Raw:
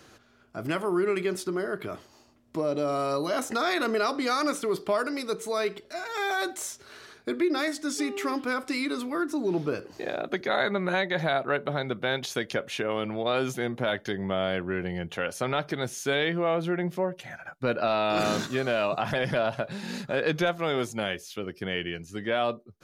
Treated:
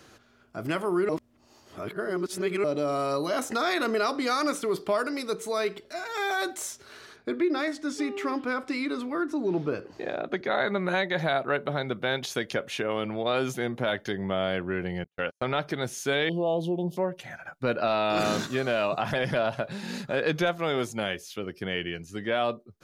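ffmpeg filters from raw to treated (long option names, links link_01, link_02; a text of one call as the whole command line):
ffmpeg -i in.wav -filter_complex "[0:a]asettb=1/sr,asplit=3[link_01][link_02][link_03];[link_01]atrim=end=7.164[link_04];[link_02]atrim=start=7.16:end=10.68,asetpts=PTS-STARTPTS,afade=type=in:duration=0.004:curve=qsin,afade=type=out:start_time=3.516:duration=0.004:curve=qsin,aemphasis=mode=reproduction:type=50kf[link_05];[link_03]atrim=start=10.676[link_06];[link_04][link_05]acrossfade=duration=0.004:curve1=hsin:curve2=qsin[link_07];[link_07][link_06]acrossfade=duration=0.004:curve1=qsin:curve2=hsin,asettb=1/sr,asplit=3[link_08][link_09][link_10];[link_08]atrim=end=15.044[link_11];[link_09]atrim=start=15.04:end=15.49,asetpts=PTS-STARTPTS,afade=type=in:duration=0.004:curve=qsin,afade=type=out:start_time=0.446:duration=0.004:curve=qsin,agate=range=-49dB:threshold=-33dB:ratio=16:release=100:detection=peak[link_12];[link_10]atrim=start=15.486[link_13];[link_11][link_12]acrossfade=duration=0.004:curve1=hsin:curve2=qsin[link_14];[link_14][link_13]acrossfade=duration=0.004:curve1=qsin:curve2=hsin,asettb=1/sr,asplit=3[link_15][link_16][link_17];[link_15]atrim=end=16.294[link_18];[link_16]atrim=start=16.29:end=16.97,asetpts=PTS-STARTPTS,afade=type=in:duration=0.004:curve=qsin,afade=type=out:start_time=0.676:duration=0.004:curve=qsin,asuperstop=centerf=1700:order=12:qfactor=0.89[link_19];[link_17]atrim=start=16.966[link_20];[link_18][link_19]acrossfade=duration=0.004:curve1=hsin:curve2=qsin[link_21];[link_21][link_20]acrossfade=duration=0.004:curve1=qsin:curve2=hsin,asplit=3[link_22][link_23][link_24];[link_22]atrim=end=1.092[link_25];[link_23]atrim=start=1.088:end=2.642,asetpts=PTS-STARTPTS,areverse[link_26];[link_24]atrim=start=2.638[link_27];[link_25][link_26]acrossfade=duration=0.004:curve1=hsin:curve2=hsin[link_28];[link_28][link_27]acrossfade=duration=0.004:curve1=hsin:curve2=hsin" out.wav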